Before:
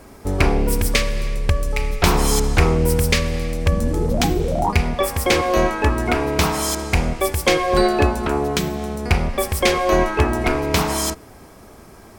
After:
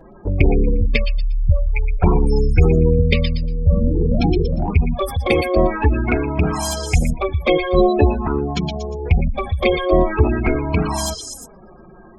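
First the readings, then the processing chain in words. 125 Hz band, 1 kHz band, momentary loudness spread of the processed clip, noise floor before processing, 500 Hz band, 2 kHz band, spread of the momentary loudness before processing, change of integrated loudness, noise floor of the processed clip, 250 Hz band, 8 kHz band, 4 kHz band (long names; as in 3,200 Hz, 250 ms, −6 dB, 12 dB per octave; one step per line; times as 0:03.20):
+3.5 dB, −3.0 dB, 7 LU, −43 dBFS, +1.0 dB, −3.0 dB, 6 LU, +1.0 dB, −43 dBFS, +2.0 dB, −6.5 dB, −5.0 dB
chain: gate on every frequency bin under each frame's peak −15 dB strong
echo through a band-pass that steps 118 ms, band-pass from 3,900 Hz, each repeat 0.7 octaves, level −2 dB
flanger swept by the level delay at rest 6.4 ms, full sweep at −13.5 dBFS
level +4 dB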